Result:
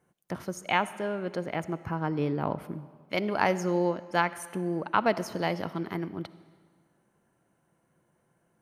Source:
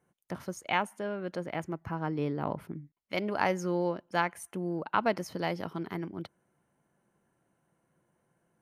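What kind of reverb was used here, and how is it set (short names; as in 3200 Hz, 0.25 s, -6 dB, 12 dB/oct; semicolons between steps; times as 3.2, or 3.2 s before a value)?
digital reverb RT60 1.7 s, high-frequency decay 0.9×, pre-delay 20 ms, DRR 15.5 dB; gain +3 dB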